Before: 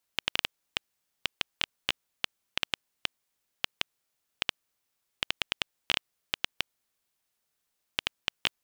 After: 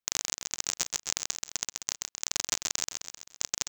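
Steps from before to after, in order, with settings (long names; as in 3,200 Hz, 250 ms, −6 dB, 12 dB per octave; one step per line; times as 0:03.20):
treble cut that deepens with the level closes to 2,800 Hz, closed at −34 dBFS
parametric band 4,300 Hz −9.5 dB 0.72 octaves
leveller curve on the samples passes 3
repeating echo 305 ms, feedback 53%, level −4 dB
wrong playback speed 33 rpm record played at 78 rpm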